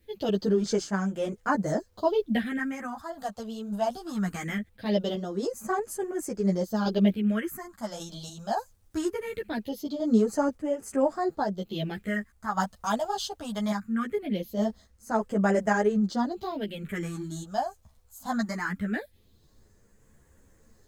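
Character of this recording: phasing stages 4, 0.21 Hz, lowest notch 320–3900 Hz; a quantiser's noise floor 12-bit, dither none; random-step tremolo; a shimmering, thickened sound

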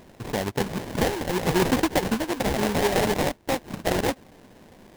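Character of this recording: aliases and images of a low sample rate 1300 Hz, jitter 20%

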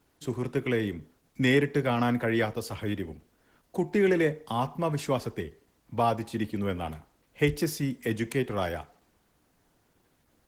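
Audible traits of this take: a quantiser's noise floor 12-bit, dither triangular; Opus

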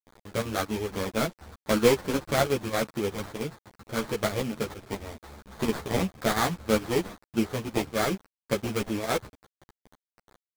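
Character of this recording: aliases and images of a low sample rate 2800 Hz, jitter 20%; chopped level 4.4 Hz, depth 60%, duty 80%; a quantiser's noise floor 8-bit, dither none; a shimmering, thickened sound

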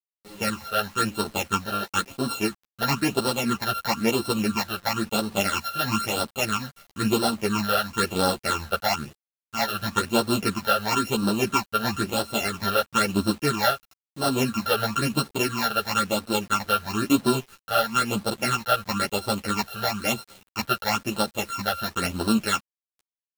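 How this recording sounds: a buzz of ramps at a fixed pitch in blocks of 32 samples; phasing stages 8, 1 Hz, lowest notch 280–2200 Hz; a quantiser's noise floor 8-bit, dither none; a shimmering, thickened sound

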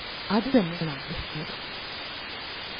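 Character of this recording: a buzz of ramps at a fixed pitch in blocks of 8 samples; tremolo saw down 3.7 Hz, depth 100%; a quantiser's noise floor 6-bit, dither triangular; MP3

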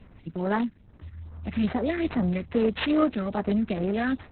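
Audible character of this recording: a quantiser's noise floor 12-bit, dither none; phasing stages 4, 2.4 Hz, lowest notch 750–4000 Hz; aliases and images of a low sample rate 7200 Hz, jitter 0%; Opus

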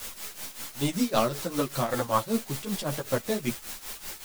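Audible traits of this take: a quantiser's noise floor 6-bit, dither triangular; tremolo triangle 5.2 Hz, depth 85%; a shimmering, thickened sound

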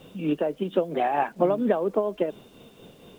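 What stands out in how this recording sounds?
tremolo triangle 4.3 Hz, depth 55%; a quantiser's noise floor 10-bit, dither none

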